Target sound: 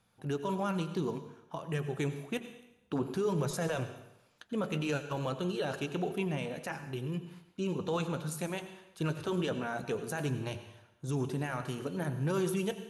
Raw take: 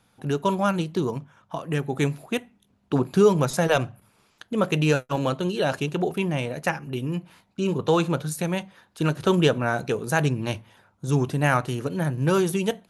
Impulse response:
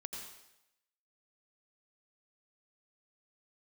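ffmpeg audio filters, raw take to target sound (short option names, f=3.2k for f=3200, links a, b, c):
-filter_complex "[0:a]flanger=delay=1.7:depth=2.7:regen=-73:speed=0.56:shape=sinusoidal,alimiter=limit=-20.5dB:level=0:latency=1:release=11,asplit=2[a][b];[1:a]atrim=start_sample=2205[c];[b][c]afir=irnorm=-1:irlink=0,volume=-1.5dB[d];[a][d]amix=inputs=2:normalize=0,volume=-7.5dB"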